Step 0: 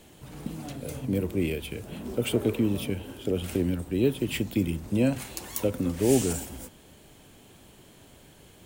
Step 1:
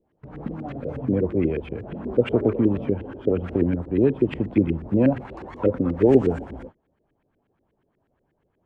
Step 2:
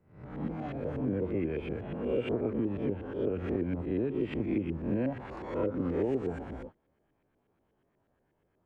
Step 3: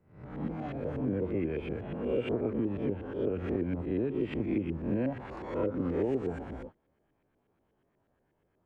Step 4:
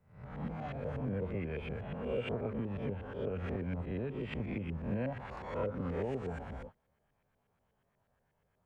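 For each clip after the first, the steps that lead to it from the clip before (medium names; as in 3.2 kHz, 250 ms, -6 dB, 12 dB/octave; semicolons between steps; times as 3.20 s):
gate -44 dBFS, range -22 dB; LFO low-pass saw up 8.3 Hz 340–2000 Hz; trim +3.5 dB
reverse spectral sustain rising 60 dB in 0.52 s; compression 6:1, threshold -21 dBFS, peak gain reduction 12 dB; trim -6 dB
no audible change
peaking EQ 320 Hz -15 dB 0.67 oct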